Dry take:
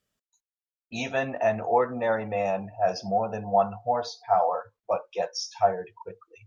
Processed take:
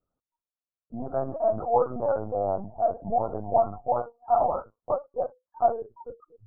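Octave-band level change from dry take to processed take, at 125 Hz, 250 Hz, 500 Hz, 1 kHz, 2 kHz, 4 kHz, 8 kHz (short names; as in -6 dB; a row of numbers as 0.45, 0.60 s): -1.0 dB, -2.5 dB, 0.0 dB, 0.0 dB, under -15 dB, under -40 dB, n/a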